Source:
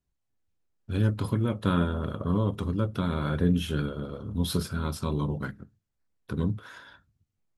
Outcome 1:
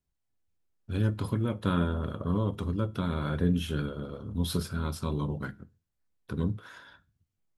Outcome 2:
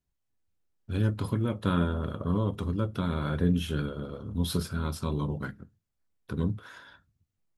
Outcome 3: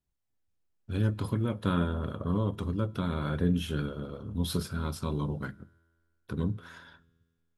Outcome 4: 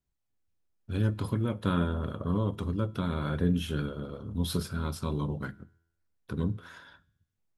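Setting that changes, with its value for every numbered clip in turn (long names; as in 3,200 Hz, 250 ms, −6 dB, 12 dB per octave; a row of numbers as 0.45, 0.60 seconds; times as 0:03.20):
tuned comb filter, decay: 0.37, 0.15, 1.8, 0.83 seconds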